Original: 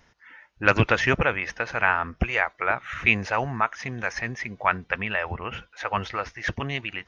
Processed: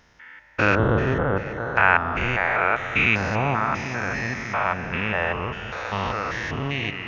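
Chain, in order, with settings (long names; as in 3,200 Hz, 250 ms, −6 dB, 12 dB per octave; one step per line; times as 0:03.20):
spectrum averaged block by block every 200 ms
0:00.75–0:01.77: moving average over 18 samples
delay that swaps between a low-pass and a high-pass 194 ms, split 840 Hz, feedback 75%, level −11 dB
level +7 dB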